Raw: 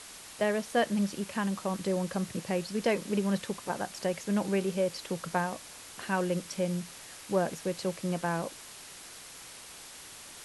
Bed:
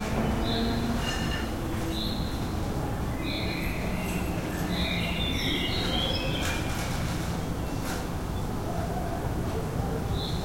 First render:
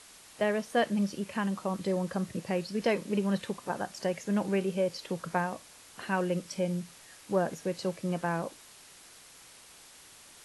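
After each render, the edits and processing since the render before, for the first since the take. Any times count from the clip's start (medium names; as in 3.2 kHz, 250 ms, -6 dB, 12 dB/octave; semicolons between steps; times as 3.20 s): noise print and reduce 6 dB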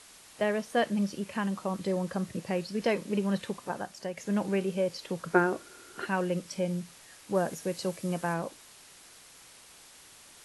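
3.59–4.17 s: fade out, to -7 dB; 5.33–6.06 s: small resonant body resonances 370/1400 Hz, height 18 dB; 7.35–8.34 s: treble shelf 7.7 kHz +9.5 dB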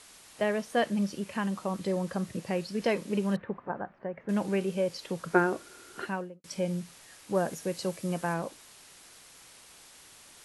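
3.36–4.29 s: low-pass 1.8 kHz 24 dB/octave; 5.97–6.44 s: studio fade out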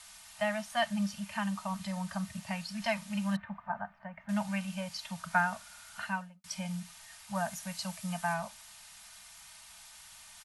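elliptic band-stop 200–690 Hz, stop band 40 dB; comb 3.3 ms, depth 51%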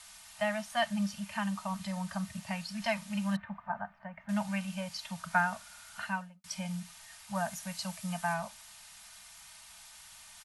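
no audible change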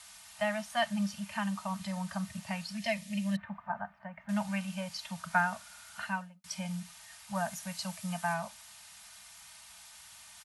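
high-pass 47 Hz; 2.78–3.39 s: time-frequency box 690–1700 Hz -11 dB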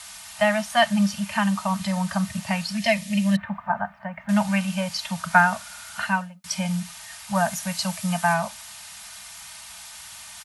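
trim +11.5 dB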